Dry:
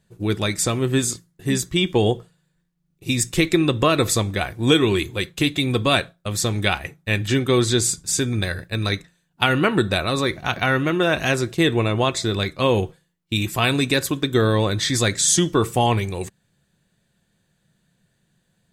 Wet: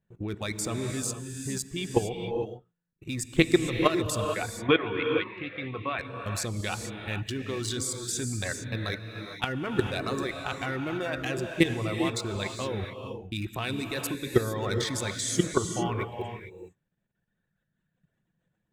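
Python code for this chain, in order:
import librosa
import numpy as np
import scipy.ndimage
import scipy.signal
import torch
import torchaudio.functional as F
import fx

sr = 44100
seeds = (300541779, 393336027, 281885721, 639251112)

y = fx.wiener(x, sr, points=9)
y = fx.dereverb_blind(y, sr, rt60_s=1.8)
y = fx.level_steps(y, sr, step_db=16)
y = fx.cabinet(y, sr, low_hz=130.0, low_slope=12, high_hz=2800.0, hz=(150.0, 220.0, 330.0, 1100.0, 2200.0), db=(-4, -6, -5, 8, 3), at=(4.24, 5.99))
y = fx.rev_gated(y, sr, seeds[0], gate_ms=480, shape='rising', drr_db=4.5)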